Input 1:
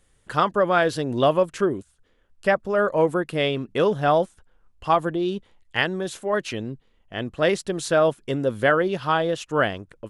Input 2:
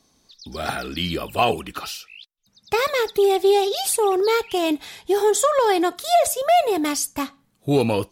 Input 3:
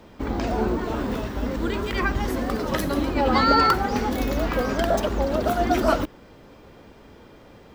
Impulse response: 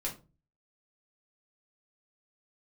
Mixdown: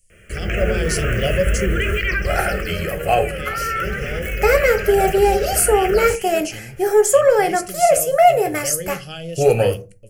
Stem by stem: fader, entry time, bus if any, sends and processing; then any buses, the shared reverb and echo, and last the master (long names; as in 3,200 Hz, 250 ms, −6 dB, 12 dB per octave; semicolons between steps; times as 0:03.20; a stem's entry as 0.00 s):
−3.5 dB, 0.00 s, bus A, send −7 dB, drawn EQ curve 210 Hz 0 dB, 1,300 Hz −19 dB, 5,300 Hz +9 dB; phaser whose notches keep moving one way falling 1.5 Hz
−0.5 dB, 1.70 s, no bus, send −3.5 dB, no processing
+2.5 dB, 0.10 s, bus A, no send, phaser with its sweep stopped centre 2,000 Hz, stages 4
bus A: 0.0 dB, parametric band 3,000 Hz +14.5 dB 0.81 octaves; brickwall limiter −16 dBFS, peak gain reduction 11.5 dB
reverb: on, RT60 0.30 s, pre-delay 4 ms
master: automatic gain control gain up to 11 dB; phaser with its sweep stopped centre 1,000 Hz, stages 6